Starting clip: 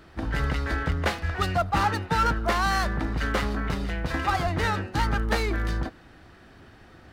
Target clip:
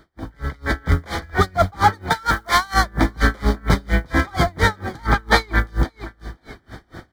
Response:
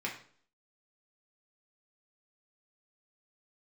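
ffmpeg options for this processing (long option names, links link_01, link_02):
-filter_complex "[0:a]acrusher=bits=8:mode=log:mix=0:aa=0.000001,asettb=1/sr,asplit=3[link_01][link_02][link_03];[link_01]atrim=end=2.104[link_04];[link_02]atrim=start=2.1:end=2.74,asetpts=PTS-STARTPTS,afade=type=in:duration=0.004:curve=qsin,afade=type=out:start_time=0.636:duration=0.004:curve=qsin,tiltshelf=frequency=640:gain=-7.5[link_05];[link_03]atrim=start=2.736[link_06];[link_04][link_05]acrossfade=duration=0.004:curve1=hsin:curve2=qsin[link_07];[link_07][link_06]acrossfade=duration=0.004:curve1=qsin:curve2=hsin,alimiter=limit=-15dB:level=0:latency=1:release=333,asoftclip=type=tanh:threshold=-19dB,asettb=1/sr,asplit=3[link_08][link_09][link_10];[link_08]atrim=end=5.054[link_11];[link_09]atrim=start=5.05:end=5.6,asetpts=PTS-STARTPTS,afade=type=in:duration=0.004:curve=qsin,afade=type=out:start_time=0.546:duration=0.004:curve=qsin,equalizer=frequency=1000:width_type=o:width=1:gain=6,equalizer=frequency=2000:width_type=o:width=1:gain=4,equalizer=frequency=4000:width_type=o:width=1:gain=6[link_12];[link_10]atrim=start=5.596[link_13];[link_11][link_12]acrossfade=duration=0.004:curve1=hsin:curve2=qsin[link_14];[link_14][link_13]acrossfade=duration=0.004:curve1=qsin:curve2=hsin,aecho=1:1:527|1054:0.158|0.0365,dynaudnorm=framelen=440:gausssize=3:maxgain=15dB,asuperstop=centerf=2700:order=12:qfactor=4.7,aeval=exprs='val(0)*pow(10,-31*(0.5-0.5*cos(2*PI*4.3*n/s))/20)':channel_layout=same,volume=1dB"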